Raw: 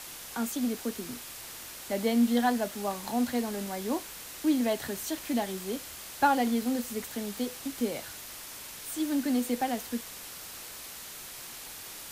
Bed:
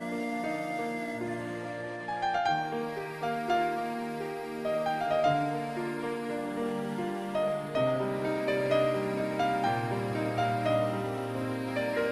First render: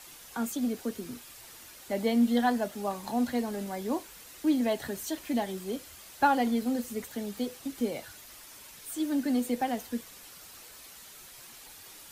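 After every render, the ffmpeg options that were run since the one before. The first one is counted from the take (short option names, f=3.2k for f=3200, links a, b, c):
-af "afftdn=nr=8:nf=-44"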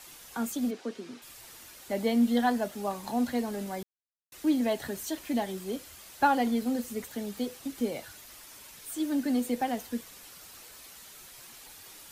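-filter_complex "[0:a]asplit=3[a][b][c];[a]afade=t=out:st=0.7:d=0.02[d];[b]highpass=250,lowpass=5.1k,afade=t=in:st=0.7:d=0.02,afade=t=out:st=1.21:d=0.02[e];[c]afade=t=in:st=1.21:d=0.02[f];[d][e][f]amix=inputs=3:normalize=0,asplit=3[g][h][i];[g]atrim=end=3.83,asetpts=PTS-STARTPTS,afade=t=out:st=3.826:d=0.004:c=hsin[j];[h]atrim=start=3.83:end=4.32,asetpts=PTS-STARTPTS,volume=0[k];[i]atrim=start=4.32,asetpts=PTS-STARTPTS,afade=t=in:d=0.004:c=hsin[l];[j][k][l]concat=n=3:v=0:a=1"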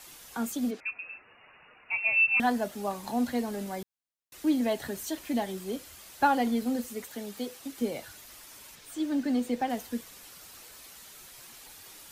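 -filter_complex "[0:a]asettb=1/sr,asplit=3[a][b][c];[a]atrim=end=0.804[d];[b]atrim=start=0.8:end=2.4,asetpts=PTS-STARTPTS,afade=t=in:d=0.004:c=qsin,afade=t=out:st=1.596:d=0.004:c=qsin,lowpass=f=2.5k:t=q:w=0.5098,lowpass=f=2.5k:t=q:w=0.6013,lowpass=f=2.5k:t=q:w=0.9,lowpass=f=2.5k:t=q:w=2.563,afreqshift=-2900[e];[c]atrim=start=2.396[f];[d][e]acrossfade=d=0.004:c1=hsin:c2=qsin[g];[g][f]acrossfade=d=0.004:c1=qsin:c2=hsin,asettb=1/sr,asplit=3[h][i][j];[h]atrim=end=6.874[k];[i]atrim=start=6.87:end=7.82,asetpts=PTS-STARTPTS,afade=t=in:d=0.004:c=qsin,afade=t=out:st=0.946:d=0.004:c=qsin,lowshelf=f=200:g=-9[l];[j]atrim=start=7.816[m];[k][l]acrossfade=d=0.004:c1=hsin:c2=qsin[n];[n][m]acrossfade=d=0.004:c1=qsin:c2=hsin,asettb=1/sr,asplit=3[o][p][q];[o]atrim=end=8.754[r];[p]atrim=start=8.75:end=9.7,asetpts=PTS-STARTPTS,afade=t=in:d=0.004:c=qsin,afade=t=out:st=0.946:d=0.004:c=qsin,equalizer=f=12k:t=o:w=0.97:g=-10.5[s];[q]atrim=start=9.696[t];[r][s]acrossfade=d=0.004:c1=hsin:c2=qsin[u];[u][t]acrossfade=d=0.004:c1=qsin:c2=hsin"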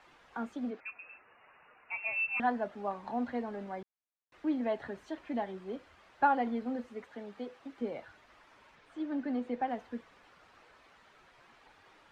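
-af "lowpass=1.6k,lowshelf=f=450:g=-9"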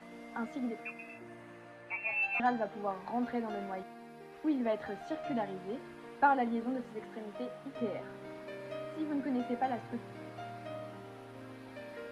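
-filter_complex "[1:a]volume=-16dB[a];[0:a][a]amix=inputs=2:normalize=0"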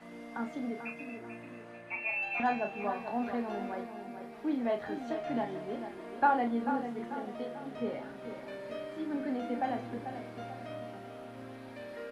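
-filter_complex "[0:a]asplit=2[a][b];[b]adelay=34,volume=-7dB[c];[a][c]amix=inputs=2:normalize=0,asplit=2[d][e];[e]adelay=441,lowpass=f=3.8k:p=1,volume=-9dB,asplit=2[f][g];[g]adelay=441,lowpass=f=3.8k:p=1,volume=0.46,asplit=2[h][i];[i]adelay=441,lowpass=f=3.8k:p=1,volume=0.46,asplit=2[j][k];[k]adelay=441,lowpass=f=3.8k:p=1,volume=0.46,asplit=2[l][m];[m]adelay=441,lowpass=f=3.8k:p=1,volume=0.46[n];[f][h][j][l][n]amix=inputs=5:normalize=0[o];[d][o]amix=inputs=2:normalize=0"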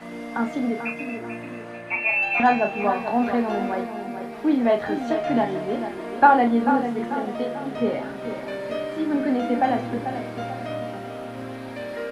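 -af "volume=12dB,alimiter=limit=-3dB:level=0:latency=1"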